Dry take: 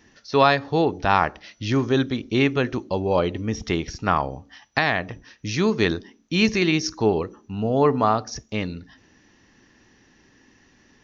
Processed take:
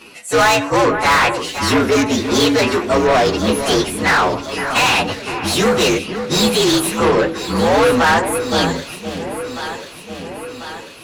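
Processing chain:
partials spread apart or drawn together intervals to 120%
mid-hump overdrive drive 30 dB, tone 4,300 Hz, clips at −6 dBFS
delay that swaps between a low-pass and a high-pass 521 ms, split 2,400 Hz, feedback 76%, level −9 dB

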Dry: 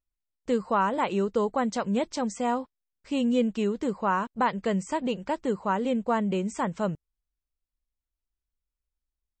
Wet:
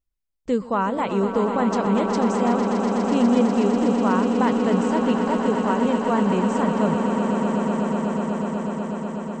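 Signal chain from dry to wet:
low-shelf EQ 440 Hz +6 dB
on a send: echo that builds up and dies away 123 ms, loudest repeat 8, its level −9.5 dB

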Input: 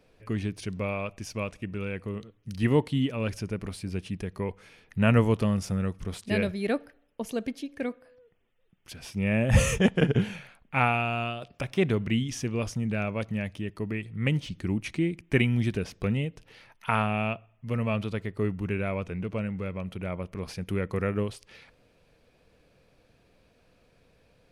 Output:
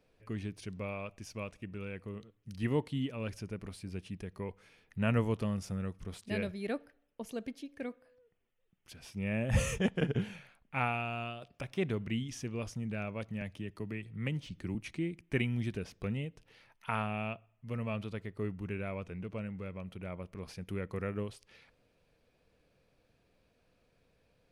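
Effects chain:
0:13.41–0:14.75: multiband upward and downward compressor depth 40%
level −8.5 dB

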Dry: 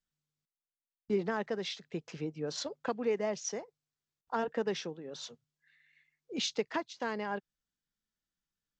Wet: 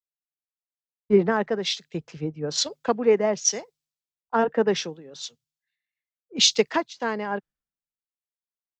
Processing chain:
multiband upward and downward expander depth 100%
level +9 dB

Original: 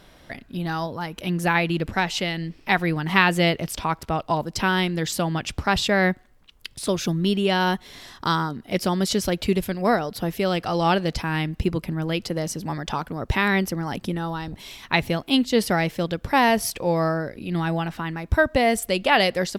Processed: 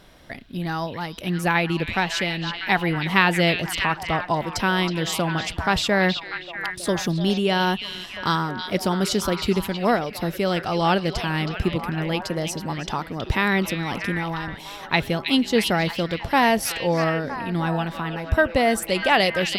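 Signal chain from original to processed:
echo through a band-pass that steps 321 ms, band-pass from 3,300 Hz, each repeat −0.7 octaves, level −3 dB

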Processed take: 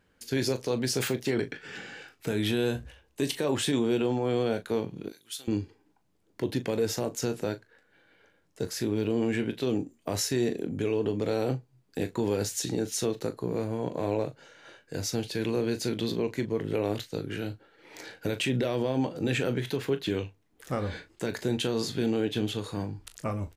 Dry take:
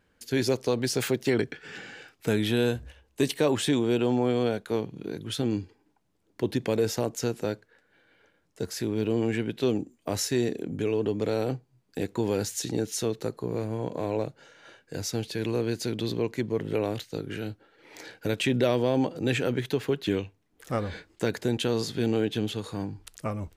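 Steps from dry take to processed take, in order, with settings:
0:05.08–0:05.48: first difference
brickwall limiter −18.5 dBFS, peak gain reduction 7.5 dB
on a send: ambience of single reflections 22 ms −13 dB, 39 ms −12.5 dB

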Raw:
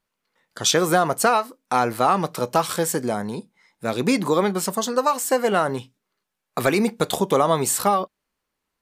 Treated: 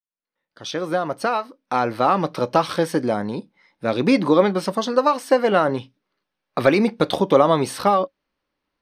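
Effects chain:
fade in at the beginning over 2.40 s
Savitzky-Golay smoothing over 15 samples
hollow resonant body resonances 300/550 Hz, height 8 dB, ringing for 85 ms
level +1.5 dB

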